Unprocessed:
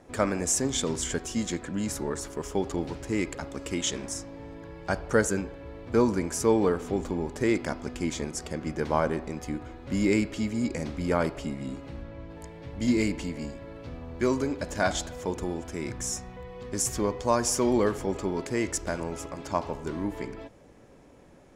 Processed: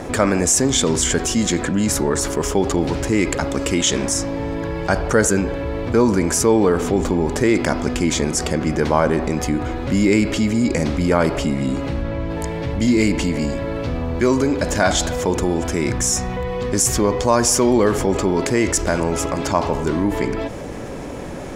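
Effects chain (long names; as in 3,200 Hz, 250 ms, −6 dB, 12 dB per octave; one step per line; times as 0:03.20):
envelope flattener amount 50%
level +6 dB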